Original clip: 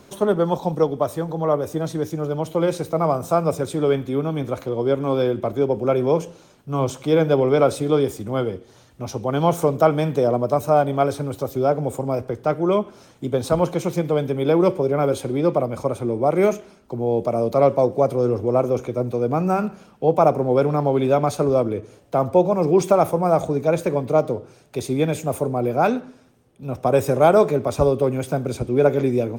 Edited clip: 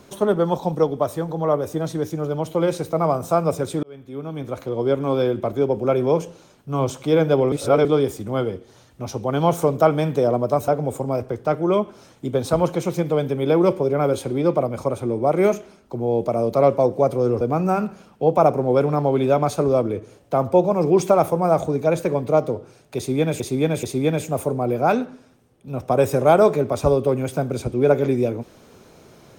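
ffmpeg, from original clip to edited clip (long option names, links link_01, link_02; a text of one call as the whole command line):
ffmpeg -i in.wav -filter_complex "[0:a]asplit=8[link_01][link_02][link_03][link_04][link_05][link_06][link_07][link_08];[link_01]atrim=end=3.83,asetpts=PTS-STARTPTS,afade=type=out:start_time=3.826:duration=0.004:curve=hsin[link_09];[link_02]atrim=start=3.83:end=7.522,asetpts=PTS-STARTPTS,afade=type=in:duration=0.99[link_10];[link_03]atrim=start=7.518:end=7.852,asetpts=PTS-STARTPTS,areverse[link_11];[link_04]atrim=start=7.848:end=10.682[link_12];[link_05]atrim=start=11.668:end=18.402[link_13];[link_06]atrim=start=19.218:end=25.212[link_14];[link_07]atrim=start=24.778:end=25.212[link_15];[link_08]atrim=start=24.778[link_16];[link_09][link_10]concat=n=2:v=0:a=1[link_17];[link_17][link_11]acrossfade=duration=0.004:curve1=hsin:curve2=hsin[link_18];[link_18][link_12]acrossfade=duration=0.004:curve1=hsin:curve2=hsin[link_19];[link_19][link_13]acrossfade=duration=0.004:curve1=hsin:curve2=hsin[link_20];[link_20][link_14]acrossfade=duration=0.004:curve1=hsin:curve2=hsin[link_21];[link_21][link_15]acrossfade=duration=0.004:curve1=hsin:curve2=hsin[link_22];[link_22][link_16]acrossfade=duration=0.004:curve1=hsin:curve2=hsin" out.wav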